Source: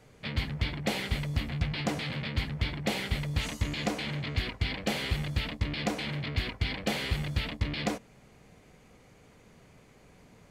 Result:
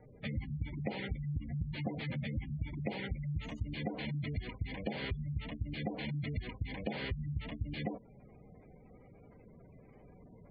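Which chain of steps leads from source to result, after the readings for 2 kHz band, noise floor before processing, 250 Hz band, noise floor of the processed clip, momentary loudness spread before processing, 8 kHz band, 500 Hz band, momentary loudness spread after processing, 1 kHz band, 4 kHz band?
−10.0 dB, −58 dBFS, −5.0 dB, −58 dBFS, 2 LU, below −30 dB, −6.5 dB, 20 LU, −9.5 dB, −13.5 dB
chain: gate on every frequency bin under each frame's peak −15 dB strong
low-pass filter 1,900 Hz 6 dB per octave
downward compressor 5 to 1, threshold −35 dBFS, peak gain reduction 11 dB
level +1 dB

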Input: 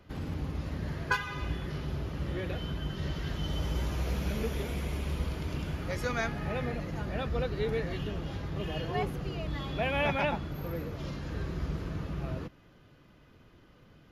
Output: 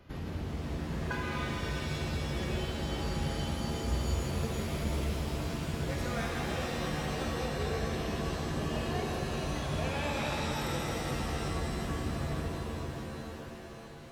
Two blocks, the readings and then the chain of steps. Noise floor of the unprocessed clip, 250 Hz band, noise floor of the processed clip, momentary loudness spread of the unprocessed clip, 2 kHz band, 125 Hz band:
−59 dBFS, +1.0 dB, −45 dBFS, 6 LU, −1.5 dB, −0.5 dB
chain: downward compressor, threshold −36 dBFS, peak gain reduction 12.5 dB
reverb with rising layers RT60 3.6 s, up +7 semitones, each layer −2 dB, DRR −2 dB

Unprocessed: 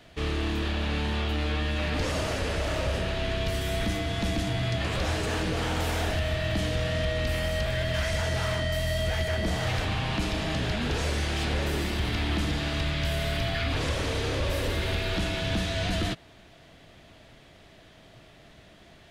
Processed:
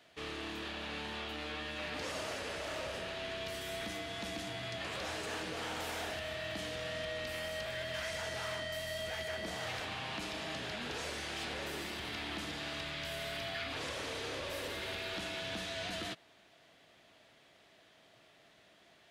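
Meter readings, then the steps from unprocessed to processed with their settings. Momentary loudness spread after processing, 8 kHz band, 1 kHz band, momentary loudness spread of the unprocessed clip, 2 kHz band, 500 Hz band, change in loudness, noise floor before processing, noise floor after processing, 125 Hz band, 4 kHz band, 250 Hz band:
2 LU, −7.5 dB, −8.5 dB, 1 LU, −8.0 dB, −10.0 dB, −10.5 dB, −53 dBFS, −64 dBFS, −21.0 dB, −7.5 dB, −14.0 dB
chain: high-pass filter 480 Hz 6 dB per octave
level −7.5 dB

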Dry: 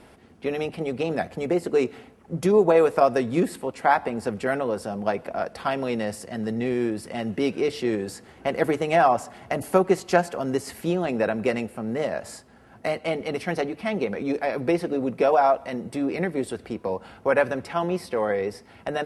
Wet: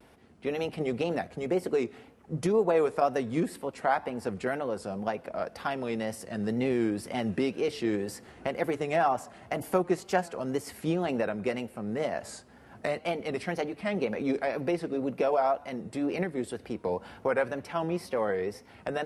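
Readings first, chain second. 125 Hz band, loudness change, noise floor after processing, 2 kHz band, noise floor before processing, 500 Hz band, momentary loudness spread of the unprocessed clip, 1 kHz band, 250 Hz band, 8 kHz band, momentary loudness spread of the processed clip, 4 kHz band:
−4.5 dB, −5.5 dB, −54 dBFS, −6.0 dB, −52 dBFS, −6.0 dB, 11 LU, −6.5 dB, −4.5 dB, −4.5 dB, 9 LU, −4.5 dB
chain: camcorder AGC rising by 5.7 dB per second
pitch vibrato 2 Hz 98 cents
level −7 dB

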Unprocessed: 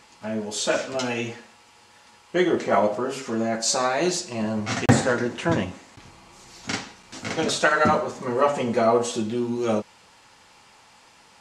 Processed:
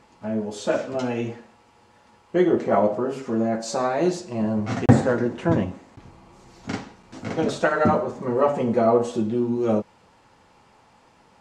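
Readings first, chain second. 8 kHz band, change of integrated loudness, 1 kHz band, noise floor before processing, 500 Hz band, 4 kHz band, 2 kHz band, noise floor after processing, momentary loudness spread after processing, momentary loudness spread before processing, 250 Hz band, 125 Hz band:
−11.0 dB, +0.5 dB, −1.5 dB, −54 dBFS, +1.5 dB, −9.5 dB, −5.5 dB, −57 dBFS, 13 LU, 11 LU, +3.0 dB, +3.5 dB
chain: tilt shelving filter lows +7.5 dB, about 1,400 Hz
level −4 dB

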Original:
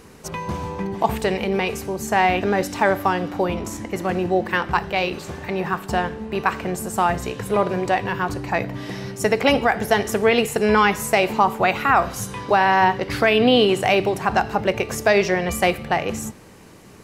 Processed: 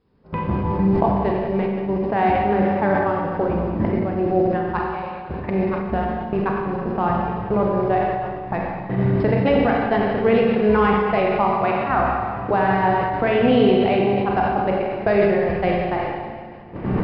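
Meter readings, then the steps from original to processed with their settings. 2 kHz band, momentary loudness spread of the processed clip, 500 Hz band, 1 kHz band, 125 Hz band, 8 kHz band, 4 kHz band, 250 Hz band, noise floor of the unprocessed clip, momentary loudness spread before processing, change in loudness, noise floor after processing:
−5.0 dB, 9 LU, +1.5 dB, −0.5 dB, +5.0 dB, below −40 dB, −9.5 dB, +3.5 dB, −44 dBFS, 11 LU, +0.5 dB, −33 dBFS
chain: adaptive Wiener filter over 9 samples
camcorder AGC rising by 36 dB per second
tilt shelving filter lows +4.5 dB, about 1,400 Hz
background noise violet −36 dBFS
noise gate −16 dBFS, range −21 dB
linear-phase brick-wall low-pass 5,300 Hz
bass and treble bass +3 dB, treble −10 dB
four-comb reverb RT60 2 s, combs from 31 ms, DRR −1 dB
level that may fall only so fast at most 30 dB per second
level −6.5 dB

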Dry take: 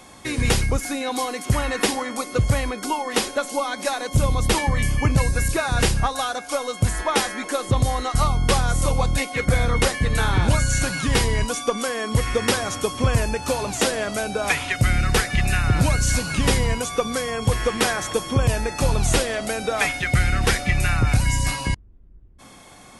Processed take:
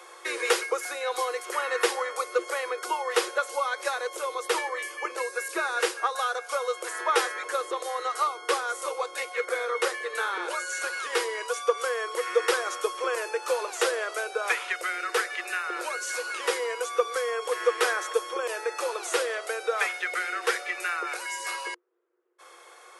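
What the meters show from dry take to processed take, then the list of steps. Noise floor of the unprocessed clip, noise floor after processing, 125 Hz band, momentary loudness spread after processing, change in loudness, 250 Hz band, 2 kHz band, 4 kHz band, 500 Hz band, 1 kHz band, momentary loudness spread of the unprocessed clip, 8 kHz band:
−46 dBFS, −50 dBFS, below −40 dB, 5 LU, −6.5 dB, −18.5 dB, −3.0 dB, −7.0 dB, −2.5 dB, −3.0 dB, 5 LU, −8.5 dB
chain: speech leveller 2 s
Chebyshev high-pass with heavy ripple 340 Hz, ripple 9 dB

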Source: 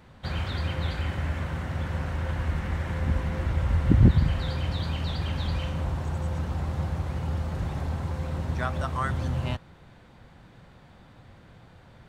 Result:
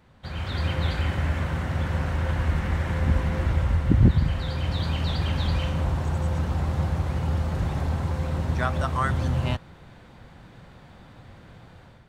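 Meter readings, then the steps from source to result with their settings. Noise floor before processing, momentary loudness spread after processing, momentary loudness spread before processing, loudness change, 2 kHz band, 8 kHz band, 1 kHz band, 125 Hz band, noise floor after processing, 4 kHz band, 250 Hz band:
−53 dBFS, 4 LU, 7 LU, +2.5 dB, +3.5 dB, can't be measured, +3.5 dB, +2.5 dB, −50 dBFS, +3.0 dB, +2.0 dB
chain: automatic gain control gain up to 9 dB
level −5 dB

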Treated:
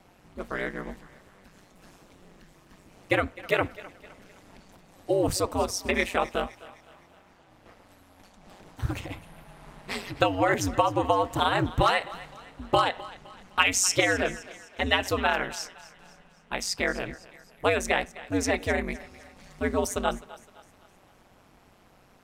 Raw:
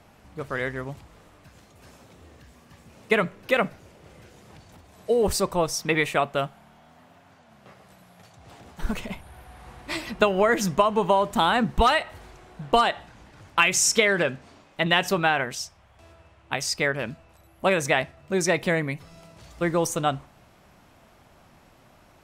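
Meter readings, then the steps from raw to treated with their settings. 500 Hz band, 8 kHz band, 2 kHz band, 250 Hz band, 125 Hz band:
−3.5 dB, −3.0 dB, −3.0 dB, −2.5 dB, −2.0 dB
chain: ring modulation 94 Hz
feedback echo with a high-pass in the loop 257 ms, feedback 47%, high-pass 420 Hz, level −17.5 dB

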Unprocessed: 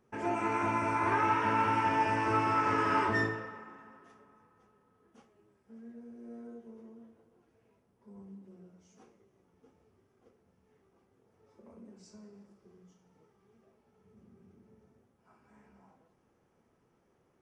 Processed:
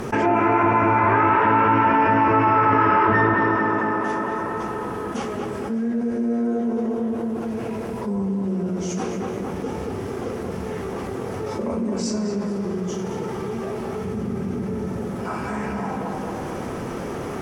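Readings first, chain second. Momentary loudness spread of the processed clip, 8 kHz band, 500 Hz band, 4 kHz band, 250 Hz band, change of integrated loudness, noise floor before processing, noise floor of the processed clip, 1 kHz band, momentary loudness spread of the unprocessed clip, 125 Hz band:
13 LU, +17.5 dB, +16.5 dB, +10.0 dB, +17.5 dB, +7.0 dB, −72 dBFS, −30 dBFS, +12.5 dB, 20 LU, +16.0 dB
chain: treble cut that deepens with the level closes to 2,100 Hz, closed at −30 dBFS
on a send: tape delay 224 ms, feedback 56%, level −4 dB, low-pass 2,000 Hz
on the sum: envelope flattener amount 70%
level +9 dB

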